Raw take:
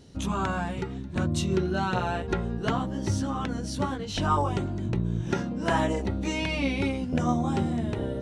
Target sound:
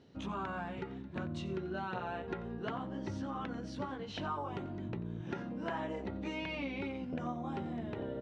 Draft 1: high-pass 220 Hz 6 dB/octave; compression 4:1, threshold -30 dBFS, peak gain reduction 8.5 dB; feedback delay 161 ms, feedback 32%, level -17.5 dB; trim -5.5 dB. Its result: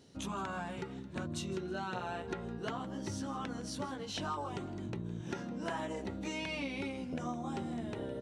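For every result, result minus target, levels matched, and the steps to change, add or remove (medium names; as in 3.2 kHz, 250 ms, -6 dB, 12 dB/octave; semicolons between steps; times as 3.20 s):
echo 71 ms late; 4 kHz band +4.0 dB
change: feedback delay 90 ms, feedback 32%, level -17.5 dB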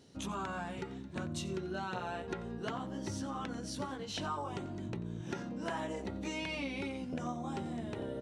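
4 kHz band +4.0 dB
add after compression: low-pass 3 kHz 12 dB/octave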